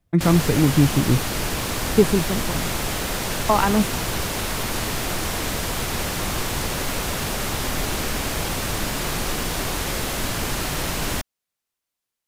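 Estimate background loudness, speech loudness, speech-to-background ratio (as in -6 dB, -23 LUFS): -25.0 LUFS, -20.5 LUFS, 4.5 dB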